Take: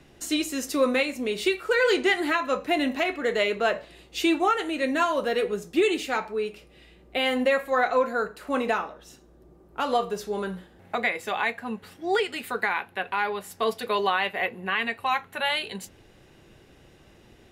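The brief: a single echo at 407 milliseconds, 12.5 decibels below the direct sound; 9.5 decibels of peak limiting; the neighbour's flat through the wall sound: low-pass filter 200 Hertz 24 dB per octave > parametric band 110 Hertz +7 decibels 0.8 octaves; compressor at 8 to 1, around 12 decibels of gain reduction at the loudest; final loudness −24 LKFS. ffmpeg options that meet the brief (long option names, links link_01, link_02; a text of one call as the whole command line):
ffmpeg -i in.wav -af "acompressor=threshold=-30dB:ratio=8,alimiter=level_in=4dB:limit=-24dB:level=0:latency=1,volume=-4dB,lowpass=frequency=200:width=0.5412,lowpass=frequency=200:width=1.3066,equalizer=frequency=110:width_type=o:width=0.8:gain=7,aecho=1:1:407:0.237,volume=28dB" out.wav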